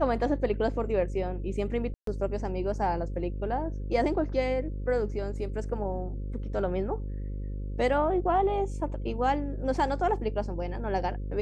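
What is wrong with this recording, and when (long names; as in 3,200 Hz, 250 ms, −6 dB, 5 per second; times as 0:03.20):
mains buzz 50 Hz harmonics 11 −34 dBFS
0:01.94–0:02.07: drop-out 133 ms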